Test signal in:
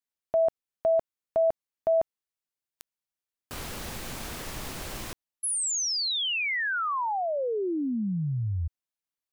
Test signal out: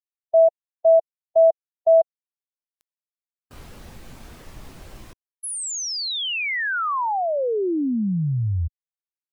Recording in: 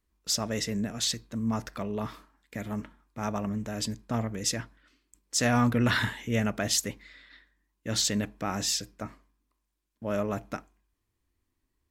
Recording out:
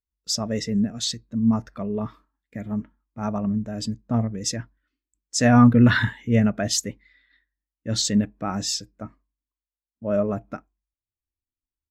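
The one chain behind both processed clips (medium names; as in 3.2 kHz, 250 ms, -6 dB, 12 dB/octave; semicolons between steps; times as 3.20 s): spectral contrast expander 1.5:1; trim +8 dB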